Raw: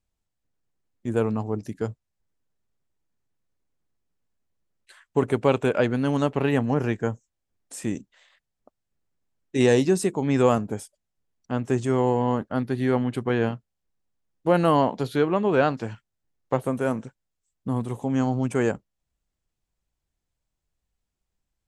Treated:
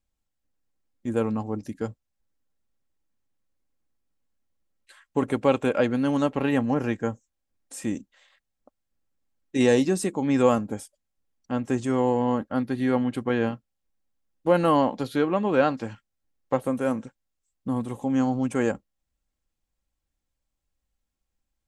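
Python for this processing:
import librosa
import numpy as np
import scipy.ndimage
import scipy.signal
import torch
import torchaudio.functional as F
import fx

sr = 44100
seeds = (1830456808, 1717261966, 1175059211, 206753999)

y = x + 0.38 * np.pad(x, (int(3.7 * sr / 1000.0), 0))[:len(x)]
y = F.gain(torch.from_numpy(y), -1.5).numpy()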